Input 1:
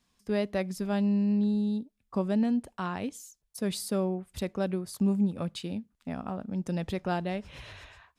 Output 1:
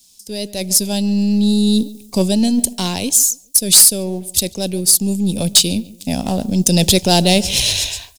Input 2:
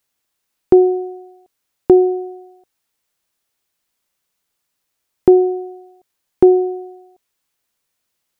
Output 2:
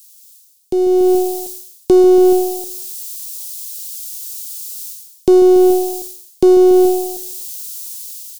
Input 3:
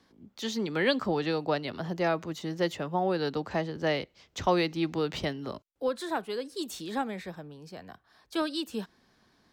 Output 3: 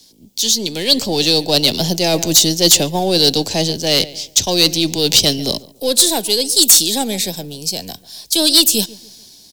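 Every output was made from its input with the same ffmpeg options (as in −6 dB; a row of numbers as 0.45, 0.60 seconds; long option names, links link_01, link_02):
-filter_complex "[0:a]aeval=exprs='if(lt(val(0),0),0.708*val(0),val(0))':channel_layout=same,equalizer=frequency=2800:width_type=o:width=1.4:gain=-8,acrossover=split=510|1000[link_01][link_02][link_03];[link_03]highpass=frequency=1400:width=0.5412,highpass=frequency=1400:width=1.3066[link_04];[link_01][link_02][link_04]amix=inputs=3:normalize=0,asplit=2[link_05][link_06];[link_06]adelay=142,lowpass=frequency=2000:poles=1,volume=-20dB,asplit=2[link_07][link_08];[link_08]adelay=142,lowpass=frequency=2000:poles=1,volume=0.35,asplit=2[link_09][link_10];[link_10]adelay=142,lowpass=frequency=2000:poles=1,volume=0.35[link_11];[link_05][link_07][link_09][link_11]amix=inputs=4:normalize=0,areverse,acompressor=threshold=-31dB:ratio=10,areverse,aexciter=amount=11.7:drive=4.6:freq=2700,dynaudnorm=framelen=200:gausssize=9:maxgain=16dB,aeval=exprs='0.944*sin(PI/2*1.78*val(0)/0.944)':channel_layout=same,volume=-1dB"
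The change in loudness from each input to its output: +16.5, +1.5, +18.0 LU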